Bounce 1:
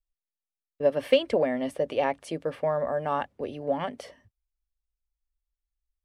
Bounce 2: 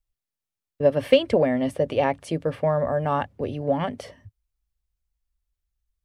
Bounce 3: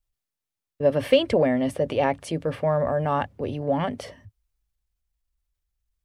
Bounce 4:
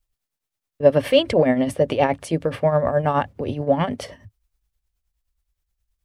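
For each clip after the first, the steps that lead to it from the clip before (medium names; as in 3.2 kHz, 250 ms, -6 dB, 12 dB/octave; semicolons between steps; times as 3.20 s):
peaking EQ 99 Hz +13.5 dB 1.6 oct; trim +3 dB
transient shaper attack -2 dB, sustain +3 dB
tremolo triangle 9.5 Hz, depth 70%; trim +7 dB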